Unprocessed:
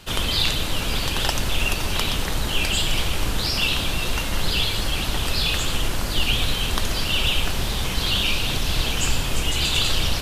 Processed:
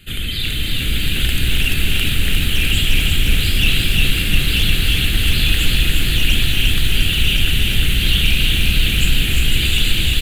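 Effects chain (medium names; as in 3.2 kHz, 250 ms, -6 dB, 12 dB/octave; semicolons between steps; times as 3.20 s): peaking EQ 630 Hz -13 dB 1.3 oct; in parallel at -1 dB: peak limiter -15 dBFS, peak gain reduction 8 dB; on the sum: level rider gain up to 7.5 dB; static phaser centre 2.4 kHz, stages 4; hard clipper -7.5 dBFS, distortion -22 dB; multi-tap echo 282/319 ms -11/-11.5 dB; bit-crushed delay 353 ms, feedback 80%, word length 6-bit, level -4 dB; trim -3 dB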